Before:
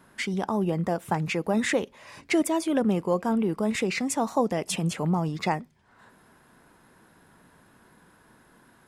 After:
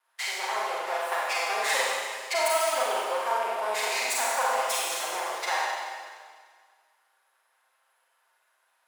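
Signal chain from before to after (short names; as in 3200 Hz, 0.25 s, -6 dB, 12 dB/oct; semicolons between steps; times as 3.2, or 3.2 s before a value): minimum comb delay 7.6 ms; HPF 670 Hz 24 dB/oct; gate -48 dBFS, range -15 dB; Schroeder reverb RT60 1.8 s, combs from 33 ms, DRR -5.5 dB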